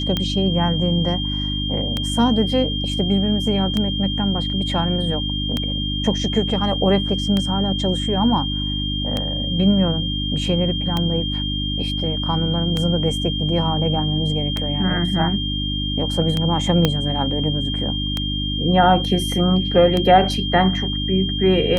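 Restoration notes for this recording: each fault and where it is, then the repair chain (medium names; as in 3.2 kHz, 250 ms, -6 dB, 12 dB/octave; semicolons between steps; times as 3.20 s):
hum 50 Hz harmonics 6 -25 dBFS
tick 33 1/3 rpm -8 dBFS
whine 3.2 kHz -25 dBFS
16.85 s: pop -3 dBFS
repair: de-click; de-hum 50 Hz, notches 6; band-stop 3.2 kHz, Q 30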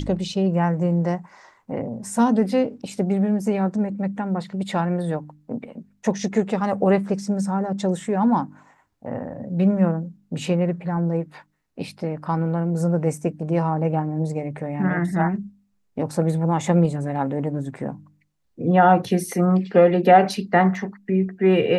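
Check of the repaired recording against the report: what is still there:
16.85 s: pop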